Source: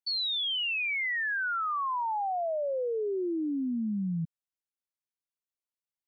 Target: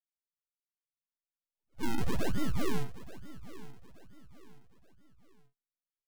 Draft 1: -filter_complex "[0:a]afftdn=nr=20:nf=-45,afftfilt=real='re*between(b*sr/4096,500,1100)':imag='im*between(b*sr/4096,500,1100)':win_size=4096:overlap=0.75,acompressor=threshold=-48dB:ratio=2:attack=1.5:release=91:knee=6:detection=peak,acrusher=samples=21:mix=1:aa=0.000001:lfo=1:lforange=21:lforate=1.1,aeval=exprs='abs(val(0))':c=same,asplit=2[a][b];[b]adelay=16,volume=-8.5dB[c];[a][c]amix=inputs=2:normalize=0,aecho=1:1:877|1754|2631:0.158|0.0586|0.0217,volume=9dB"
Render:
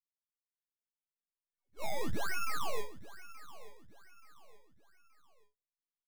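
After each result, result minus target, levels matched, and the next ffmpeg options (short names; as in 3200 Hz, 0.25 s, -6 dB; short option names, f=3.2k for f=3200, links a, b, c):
decimation with a swept rate: distortion -23 dB; compressor: peak gain reduction +4.5 dB
-filter_complex "[0:a]afftdn=nr=20:nf=-45,afftfilt=real='re*between(b*sr/4096,500,1100)':imag='im*between(b*sr/4096,500,1100)':win_size=4096:overlap=0.75,acompressor=threshold=-48dB:ratio=2:attack=1.5:release=91:knee=6:detection=peak,acrusher=samples=52:mix=1:aa=0.000001:lfo=1:lforange=52:lforate=1.1,aeval=exprs='abs(val(0))':c=same,asplit=2[a][b];[b]adelay=16,volume=-8.5dB[c];[a][c]amix=inputs=2:normalize=0,aecho=1:1:877|1754|2631:0.158|0.0586|0.0217,volume=9dB"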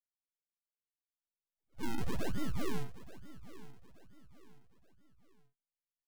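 compressor: peak gain reduction +4.5 dB
-filter_complex "[0:a]afftdn=nr=20:nf=-45,afftfilt=real='re*between(b*sr/4096,500,1100)':imag='im*between(b*sr/4096,500,1100)':win_size=4096:overlap=0.75,acompressor=threshold=-39dB:ratio=2:attack=1.5:release=91:knee=6:detection=peak,acrusher=samples=52:mix=1:aa=0.000001:lfo=1:lforange=52:lforate=1.1,aeval=exprs='abs(val(0))':c=same,asplit=2[a][b];[b]adelay=16,volume=-8.5dB[c];[a][c]amix=inputs=2:normalize=0,aecho=1:1:877|1754|2631:0.158|0.0586|0.0217,volume=9dB"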